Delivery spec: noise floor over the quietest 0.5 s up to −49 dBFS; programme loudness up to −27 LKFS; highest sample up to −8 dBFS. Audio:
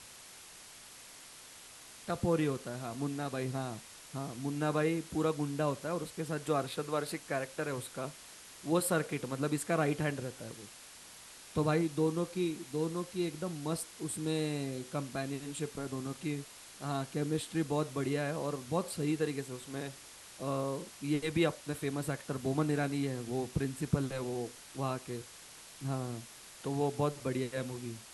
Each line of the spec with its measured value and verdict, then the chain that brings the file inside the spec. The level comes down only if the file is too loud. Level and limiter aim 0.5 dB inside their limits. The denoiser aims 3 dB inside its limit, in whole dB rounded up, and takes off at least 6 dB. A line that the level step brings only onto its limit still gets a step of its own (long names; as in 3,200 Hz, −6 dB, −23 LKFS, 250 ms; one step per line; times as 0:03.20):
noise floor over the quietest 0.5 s −53 dBFS: in spec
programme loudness −35.5 LKFS: in spec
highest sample −14.0 dBFS: in spec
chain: no processing needed